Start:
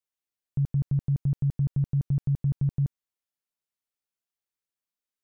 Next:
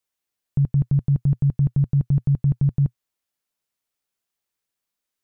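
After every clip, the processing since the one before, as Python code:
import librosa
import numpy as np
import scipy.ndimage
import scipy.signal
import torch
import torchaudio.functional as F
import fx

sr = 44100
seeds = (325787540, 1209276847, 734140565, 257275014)

y = fx.dynamic_eq(x, sr, hz=120.0, q=5.0, threshold_db=-40.0, ratio=4.0, max_db=-4)
y = y * 10.0 ** (7.5 / 20.0)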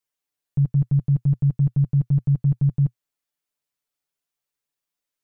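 y = x + 0.82 * np.pad(x, (int(6.9 * sr / 1000.0), 0))[:len(x)]
y = y * 10.0 ** (-5.0 / 20.0)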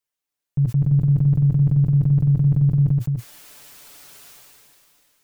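y = x + 10.0 ** (-7.0 / 20.0) * np.pad(x, (int(291 * sr / 1000.0), 0))[:len(x)]
y = fx.sustainer(y, sr, db_per_s=21.0)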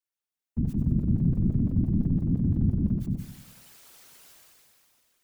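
y = fx.whisperise(x, sr, seeds[0])
y = fx.echo_feedback(y, sr, ms=95, feedback_pct=53, wet_db=-12)
y = y * 10.0 ** (-8.0 / 20.0)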